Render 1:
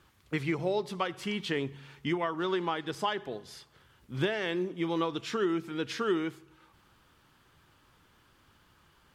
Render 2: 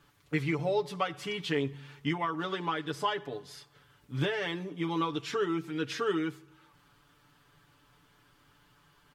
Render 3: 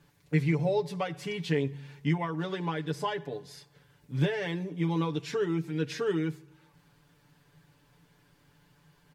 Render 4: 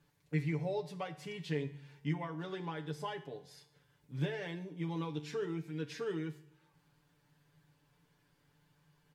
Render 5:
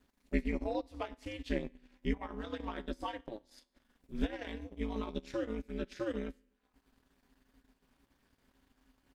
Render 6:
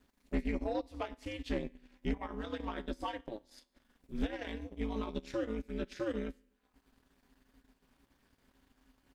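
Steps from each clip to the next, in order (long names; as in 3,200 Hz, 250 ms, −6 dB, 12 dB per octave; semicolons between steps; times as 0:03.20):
comb filter 6.9 ms, depth 87%; level −2.5 dB
thirty-one-band graphic EQ 160 Hz +10 dB, 500 Hz +4 dB, 1,250 Hz −10 dB, 3,150 Hz −5 dB
tuned comb filter 75 Hz, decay 0.58 s, harmonics all, mix 60%; level −2.5 dB
ring modulation 110 Hz; transient designer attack +2 dB, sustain −12 dB; level +3.5 dB
soft clipping −25.5 dBFS, distortion −15 dB; level +1.5 dB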